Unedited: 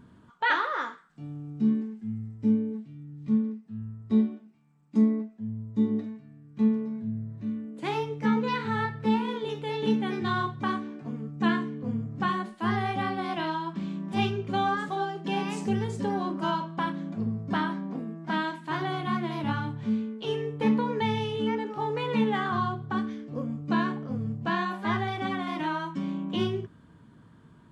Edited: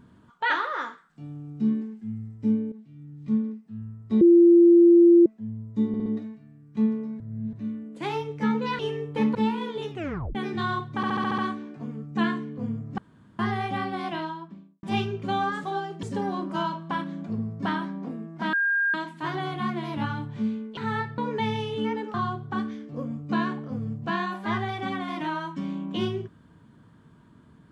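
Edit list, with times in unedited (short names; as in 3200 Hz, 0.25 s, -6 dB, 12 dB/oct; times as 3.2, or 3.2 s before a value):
2.72–3.05 fade in, from -12.5 dB
4.21–5.26 bleep 343 Hz -11 dBFS
5.88 stutter 0.06 s, 4 plays
7.02–7.35 reverse
8.61–9.02 swap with 20.24–20.8
9.58 tape stop 0.44 s
10.63 stutter 0.07 s, 7 plays
12.23–12.64 room tone
13.29–14.08 studio fade out
15.28–15.91 cut
18.41 add tone 1610 Hz -20.5 dBFS 0.41 s
21.76–22.53 cut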